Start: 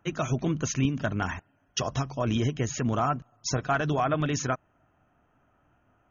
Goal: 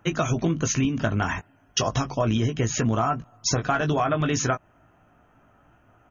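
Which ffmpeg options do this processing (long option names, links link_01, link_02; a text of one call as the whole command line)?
ffmpeg -i in.wav -filter_complex "[0:a]asplit=2[link_01][link_02];[link_02]adelay=18,volume=-7dB[link_03];[link_01][link_03]amix=inputs=2:normalize=0,acompressor=threshold=-27dB:ratio=6,volume=7.5dB" out.wav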